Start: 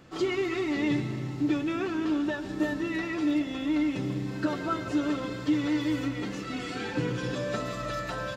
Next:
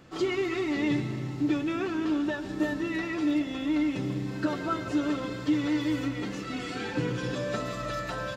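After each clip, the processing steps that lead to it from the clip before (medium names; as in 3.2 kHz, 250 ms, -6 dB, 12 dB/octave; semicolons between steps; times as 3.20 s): no audible change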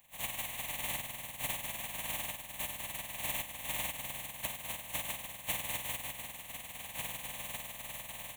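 spectral contrast reduction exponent 0.14; static phaser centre 1.4 kHz, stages 6; AM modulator 20 Hz, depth 35%; trim -5.5 dB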